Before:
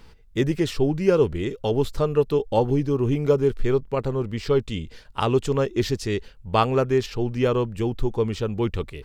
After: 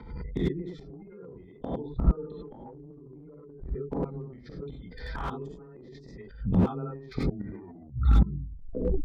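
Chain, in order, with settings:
turntable brake at the end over 2.07 s
gate on every frequency bin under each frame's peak −25 dB strong
frequency shifter +13 Hz
notch comb filter 560 Hz
gate with flip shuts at −23 dBFS, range −40 dB
Butterworth band-reject 2,800 Hz, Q 3.1
high-frequency loss of the air 160 metres
reverb whose tail is shaped and stops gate 120 ms rising, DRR −6 dB
dynamic equaliser 280 Hz, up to +5 dB, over −49 dBFS, Q 1
transient designer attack −2 dB, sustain +11 dB
slew-rate limiting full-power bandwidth 15 Hz
level +7 dB

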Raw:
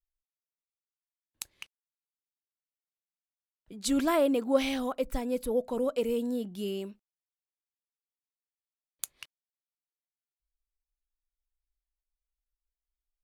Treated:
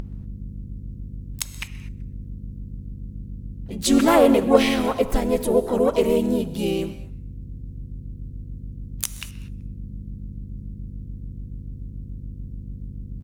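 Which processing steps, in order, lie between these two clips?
mains hum 50 Hz, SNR 14 dB
in parallel at −0.5 dB: upward compression, threshold −31 dBFS
on the sum: pitch-shifted copies added −3 semitones −3 dB, +5 semitones −11 dB, +12 semitones −18 dB
on a send: echo with shifted repeats 127 ms, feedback 45%, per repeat −110 Hz, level −23.5 dB
on the sum: reverb whose tail is shaped and stops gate 260 ms flat, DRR 12 dB
level +2 dB

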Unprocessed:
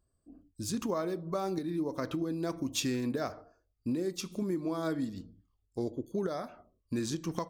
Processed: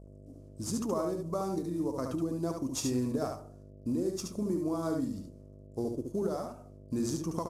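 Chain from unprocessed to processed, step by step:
variable-slope delta modulation 64 kbit/s
hum with harmonics 50 Hz, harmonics 13, −51 dBFS −5 dB per octave
flat-topped bell 2,500 Hz −11 dB
on a send: single-tap delay 72 ms −4.5 dB

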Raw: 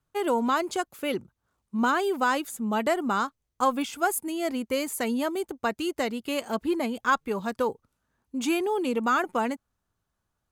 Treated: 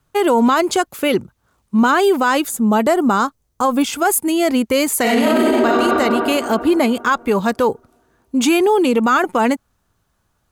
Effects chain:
0:02.48–0:03.87: parametric band 2,500 Hz −6 dB 1.7 octaves
0:05.01–0:05.66: thrown reverb, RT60 2.6 s, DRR −9 dB
boost into a limiter +20 dB
level −6 dB

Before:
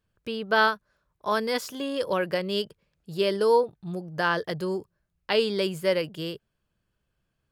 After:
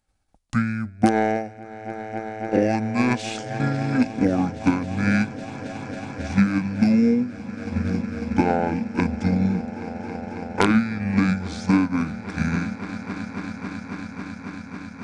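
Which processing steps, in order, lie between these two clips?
stylus tracing distortion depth 0.021 ms
high-shelf EQ 6,400 Hz +7 dB
on a send: echo that builds up and dies away 137 ms, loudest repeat 5, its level −16.5 dB
on the sum: transient designer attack +8 dB, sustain −4 dB
dynamic equaliser 380 Hz, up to +5 dB, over −32 dBFS, Q 1.1
in parallel at −5.5 dB: wrap-around overflow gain 3 dB
on the sum: downward compressor 5 to 1, threshold −14 dBFS, peak gain reduction 8 dB
wrong playback speed 15 ips tape played at 7.5 ips
level −1.5 dB

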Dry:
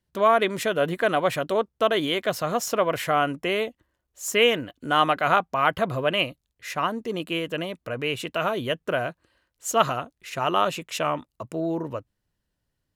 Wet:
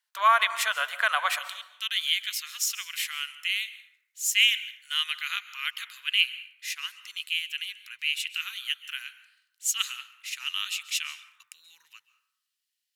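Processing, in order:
inverse Chebyshev high-pass filter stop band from 310 Hz, stop band 60 dB, from 0:01.38 stop band from 680 Hz
dense smooth reverb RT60 0.88 s, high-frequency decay 0.5×, pre-delay 120 ms, DRR 14 dB
level +4 dB

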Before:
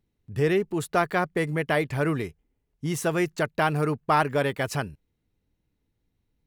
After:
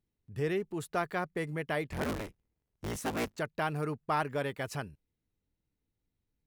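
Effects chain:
0:01.90–0:03.37: sub-harmonics by changed cycles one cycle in 3, inverted
level −9 dB

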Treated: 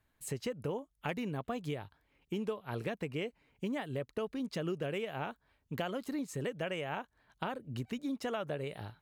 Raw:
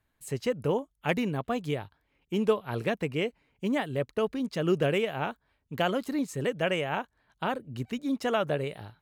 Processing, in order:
downward compressor 4 to 1, threshold −35 dBFS, peak gain reduction 14 dB

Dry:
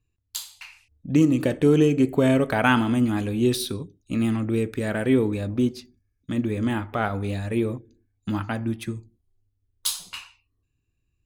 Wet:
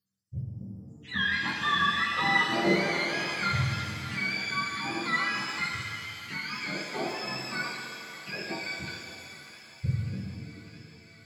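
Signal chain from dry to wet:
frequency axis turned over on the octave scale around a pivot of 720 Hz
feedback echo with a high-pass in the loop 601 ms, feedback 81%, high-pass 710 Hz, level −16 dB
reverb with rising layers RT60 2.5 s, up +7 semitones, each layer −8 dB, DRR 0.5 dB
level −7.5 dB

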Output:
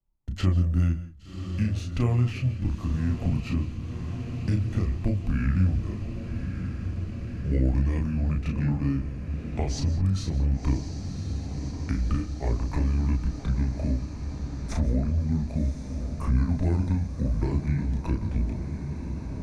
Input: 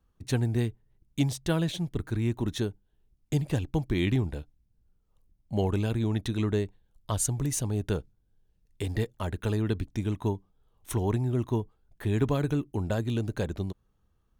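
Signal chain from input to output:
pitch glide at a constant tempo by −3.5 semitones starting unshifted
noise gate −55 dBFS, range −29 dB
spectral tilt −1.5 dB per octave
in parallel at +0.5 dB: downward compressor, threshold −30 dBFS, peak gain reduction 12.5 dB
on the sum: chorus effect 0.51 Hz, depth 5.3 ms
wrong playback speed 45 rpm record played at 33 rpm
feedback delay with all-pass diffusion 1,103 ms, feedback 71%, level −11.5 dB
on a send at −16 dB: convolution reverb, pre-delay 119 ms
on the sum: multiband upward and downward compressor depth 40%

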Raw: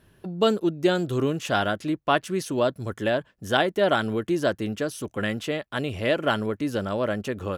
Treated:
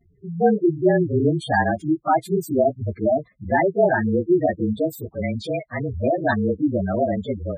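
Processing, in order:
partials spread apart or drawn together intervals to 109%
gate on every frequency bin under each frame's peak −10 dB strong
0:04.92–0:06.03: dynamic equaliser 290 Hz, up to −6 dB, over −46 dBFS, Q 1.3
automatic gain control gain up to 5 dB
level +3 dB

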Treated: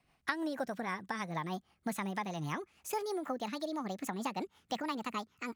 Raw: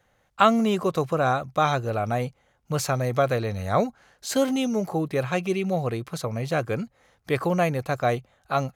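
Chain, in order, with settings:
gliding playback speed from 139% → 176%
downward compressor 3 to 1, threshold −29 dBFS, peak gain reduction 12.5 dB
rotating-speaker cabinet horn 6.3 Hz
level −4 dB

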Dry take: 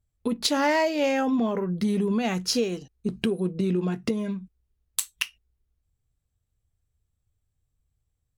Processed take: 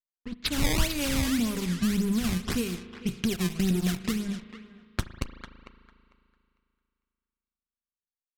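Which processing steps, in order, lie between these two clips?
fade in at the beginning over 0.63 s
dead-zone distortion −38.5 dBFS
0:03.29–0:04.02: hollow resonant body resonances 670/3,700 Hz, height 15 dB, ringing for 25 ms
sample-and-hold swept by an LFO 18×, swing 160% 1.8 Hz
feedback echo with a high-pass in the loop 450 ms, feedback 23%, high-pass 840 Hz, level −10 dB
low-pass that shuts in the quiet parts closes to 1,400 Hz, open at −24 dBFS
guitar amp tone stack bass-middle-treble 6-0-2
spring reverb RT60 2.5 s, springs 37 ms, chirp 30 ms, DRR 13.5 dB
sine wavefolder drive 7 dB, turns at −24 dBFS
low-shelf EQ 63 Hz +10.5 dB
level +7 dB

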